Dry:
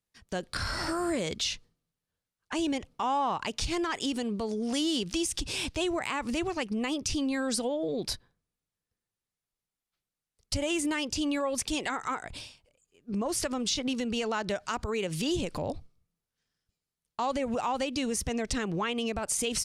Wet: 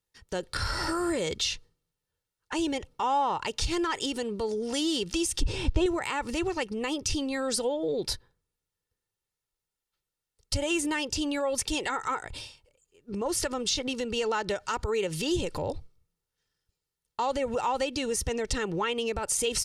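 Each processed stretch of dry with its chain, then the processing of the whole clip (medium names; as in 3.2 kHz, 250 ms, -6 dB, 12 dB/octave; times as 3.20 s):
5.42–5.86 s: low-pass 9.3 kHz + tilt EQ -3 dB/octave
whole clip: band-stop 2.3 kHz, Q 22; comb 2.2 ms, depth 47%; trim +1 dB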